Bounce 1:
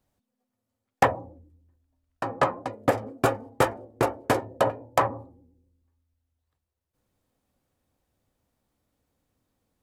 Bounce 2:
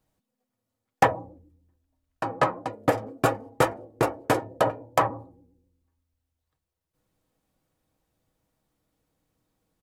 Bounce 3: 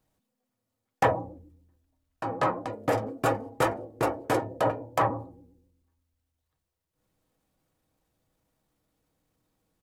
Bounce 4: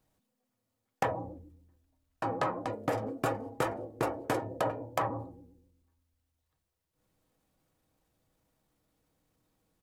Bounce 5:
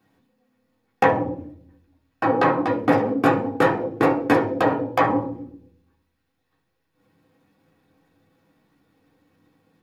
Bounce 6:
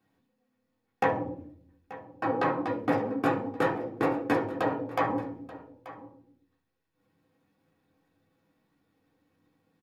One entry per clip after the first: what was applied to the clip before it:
comb filter 6.3 ms, depth 34%
transient designer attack −6 dB, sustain +4 dB
downward compressor 6 to 1, threshold −27 dBFS, peak gain reduction 9.5 dB
convolution reverb RT60 0.50 s, pre-delay 3 ms, DRR −4.5 dB; level +1.5 dB
single-tap delay 883 ms −17.5 dB; level −8.5 dB

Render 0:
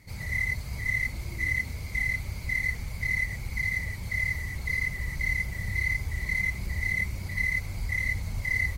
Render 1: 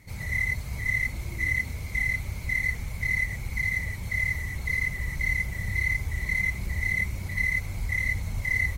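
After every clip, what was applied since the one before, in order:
notch filter 4,700 Hz, Q 7.1
level +1.5 dB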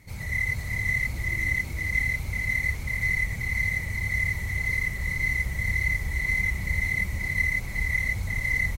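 single-tap delay 381 ms −3.5 dB

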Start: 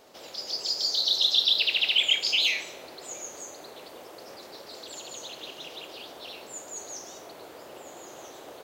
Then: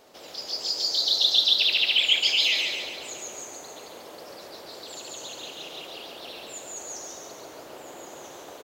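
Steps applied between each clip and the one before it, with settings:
repeating echo 139 ms, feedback 54%, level −3.5 dB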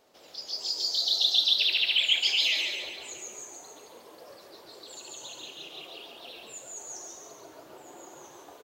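noise reduction from a noise print of the clip's start 6 dB
level −3 dB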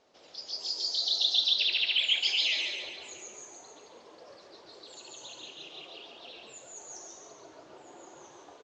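Butterworth low-pass 6,900 Hz 36 dB per octave
level −2.5 dB

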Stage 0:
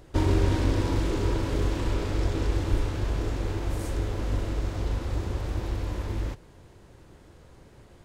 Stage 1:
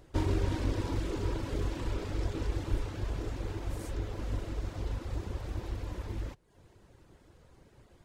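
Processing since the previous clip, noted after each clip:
reverb reduction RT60 0.6 s
level −5.5 dB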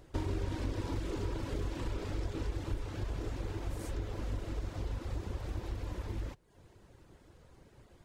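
downward compressor 2.5 to 1, threshold −33 dBFS, peak gain reduction 7.5 dB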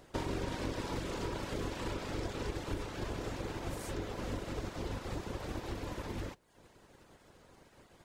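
ceiling on every frequency bin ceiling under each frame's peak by 14 dB
level −2 dB

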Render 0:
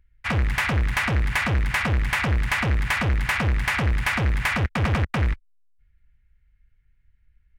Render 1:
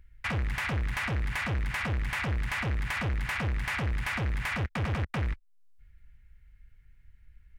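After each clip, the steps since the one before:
brickwall limiter −18.5 dBFS, peak gain reduction 5 dB
downward compressor 2 to 1, threshold −44 dBFS, peak gain reduction 12.5 dB
level +5.5 dB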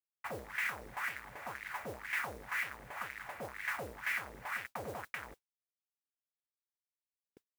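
bit reduction 7 bits
auto-filter band-pass sine 2 Hz 470–2,100 Hz
noise that follows the level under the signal 15 dB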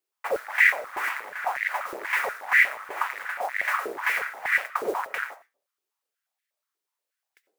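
convolution reverb RT60 0.35 s, pre-delay 45 ms, DRR 13.5 dB
high-pass on a step sequencer 8.3 Hz 380–1,900 Hz
level +8.5 dB

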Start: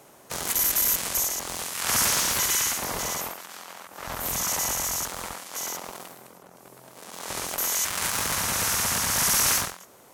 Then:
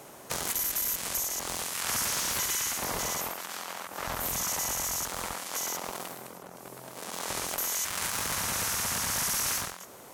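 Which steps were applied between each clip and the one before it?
downward compressor 3 to 1, threshold −35 dBFS, peak gain reduction 12 dB
level +4 dB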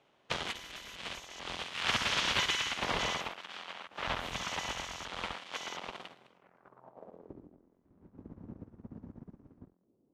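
leveller curve on the samples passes 1
low-pass filter sweep 3,200 Hz → 290 Hz, 0:06.31–0:07.38
expander for the loud parts 2.5 to 1, over −42 dBFS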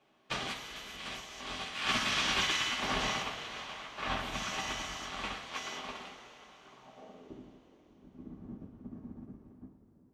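coupled-rooms reverb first 0.2 s, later 4.5 s, from −21 dB, DRR −4 dB
level −5 dB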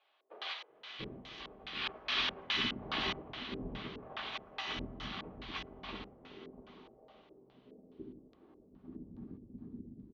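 auto-filter low-pass square 2.4 Hz 410–4,000 Hz
high-frequency loss of the air 140 metres
multiband delay without the direct sound highs, lows 690 ms, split 510 Hz
level −3 dB

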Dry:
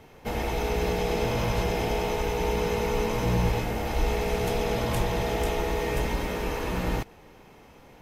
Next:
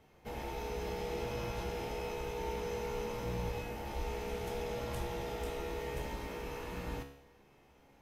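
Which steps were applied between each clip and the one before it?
tuned comb filter 69 Hz, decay 0.72 s, harmonics all, mix 80%
level −3 dB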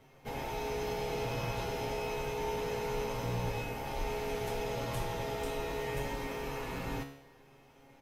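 comb filter 7.5 ms, depth 68%
level +2.5 dB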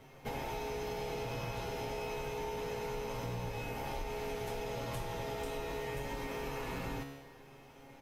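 downward compressor, threshold −40 dBFS, peak gain reduction 10 dB
level +4 dB

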